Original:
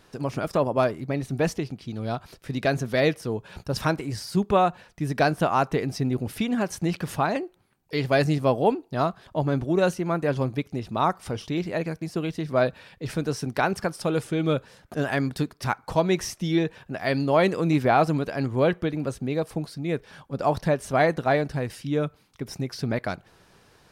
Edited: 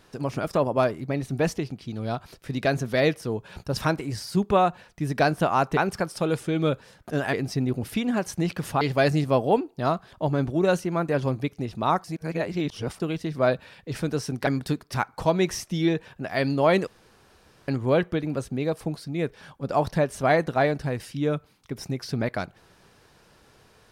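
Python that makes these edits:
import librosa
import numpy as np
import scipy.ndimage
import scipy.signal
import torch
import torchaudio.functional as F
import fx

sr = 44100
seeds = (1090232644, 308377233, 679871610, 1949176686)

y = fx.edit(x, sr, fx.cut(start_s=7.25, length_s=0.7),
    fx.reverse_span(start_s=11.18, length_s=0.96),
    fx.move(start_s=13.61, length_s=1.56, to_s=5.77),
    fx.room_tone_fill(start_s=17.57, length_s=0.81), tone=tone)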